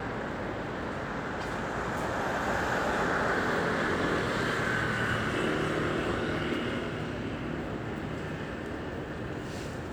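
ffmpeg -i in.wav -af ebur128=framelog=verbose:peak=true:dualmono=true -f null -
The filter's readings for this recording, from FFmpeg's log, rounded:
Integrated loudness:
  I:         -28.2 LUFS
  Threshold: -38.2 LUFS
Loudness range:
  LRA:         5.9 LU
  Threshold: -47.4 LUFS
  LRA low:   -31.6 LUFS
  LRA high:  -25.6 LUFS
True peak:
  Peak:      -16.3 dBFS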